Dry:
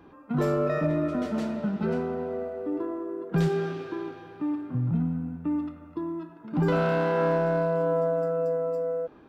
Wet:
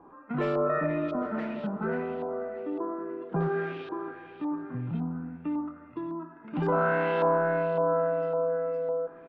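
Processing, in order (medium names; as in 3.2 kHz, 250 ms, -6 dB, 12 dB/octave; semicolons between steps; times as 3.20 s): peaking EQ 72 Hz -9 dB 2.2 oct; on a send: delay 1173 ms -23 dB; on the sum: LFO low-pass saw up 1.8 Hz 880–3700 Hz; trim -2 dB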